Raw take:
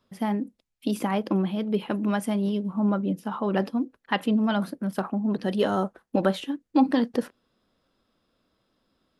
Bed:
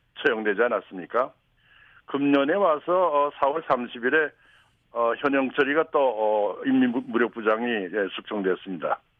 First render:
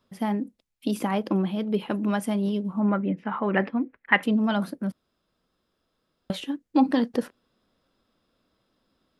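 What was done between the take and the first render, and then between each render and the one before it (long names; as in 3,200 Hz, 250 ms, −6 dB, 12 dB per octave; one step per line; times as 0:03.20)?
0:02.81–0:04.23: low-pass with resonance 2,100 Hz, resonance Q 4.4
0:04.92–0:06.30: fill with room tone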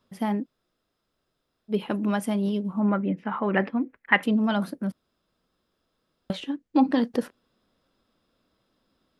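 0:00.43–0:01.71: fill with room tone, crossfade 0.06 s
0:06.33–0:06.98: high-frequency loss of the air 58 metres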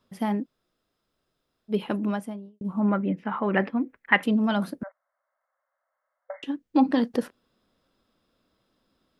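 0:01.90–0:02.61: fade out and dull
0:04.83–0:06.43: linear-phase brick-wall band-pass 520–2,200 Hz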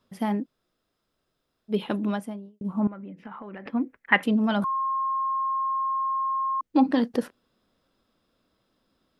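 0:01.76–0:02.18: parametric band 3,600 Hz +9 dB 0.26 octaves
0:02.87–0:03.66: downward compressor 12 to 1, threshold −36 dBFS
0:04.64–0:06.61: beep over 1,070 Hz −23.5 dBFS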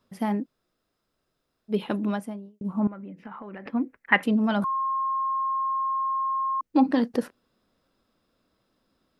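parametric band 3,300 Hz −3.5 dB 0.29 octaves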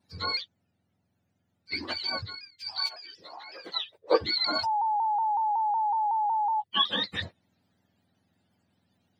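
frequency axis turned over on the octave scale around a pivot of 960 Hz
pitch modulation by a square or saw wave saw down 5.4 Hz, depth 100 cents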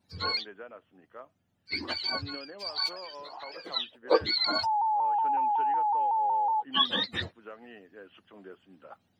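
mix in bed −23 dB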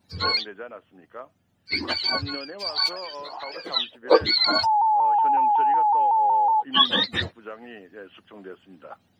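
level +7 dB
brickwall limiter −3 dBFS, peak gain reduction 1 dB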